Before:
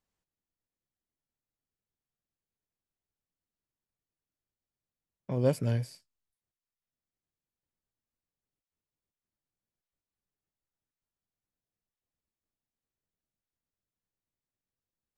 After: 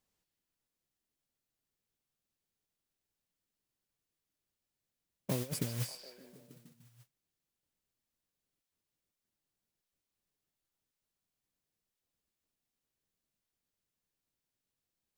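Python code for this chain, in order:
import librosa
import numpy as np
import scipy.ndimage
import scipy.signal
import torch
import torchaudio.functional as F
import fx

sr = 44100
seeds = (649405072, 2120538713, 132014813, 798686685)

y = fx.over_compress(x, sr, threshold_db=-32.0, ratio=-0.5)
y = fx.peak_eq(y, sr, hz=1200.0, db=-4.5, octaves=2.7)
y = fx.echo_stepped(y, sr, ms=148, hz=3600.0, octaves=-0.7, feedback_pct=70, wet_db=-4)
y = fx.mod_noise(y, sr, seeds[0], snr_db=11)
y = fx.low_shelf(y, sr, hz=140.0, db=-7.0)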